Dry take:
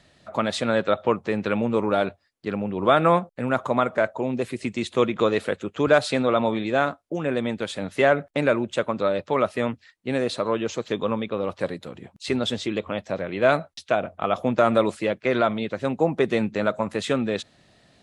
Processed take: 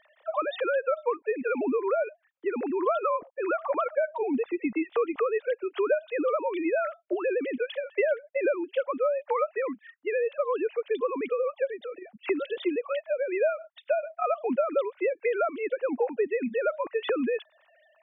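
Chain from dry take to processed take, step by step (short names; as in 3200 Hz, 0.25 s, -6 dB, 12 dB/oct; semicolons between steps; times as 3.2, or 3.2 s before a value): sine-wave speech; compressor 4:1, threshold -29 dBFS, peak gain reduction 17 dB; gain +4 dB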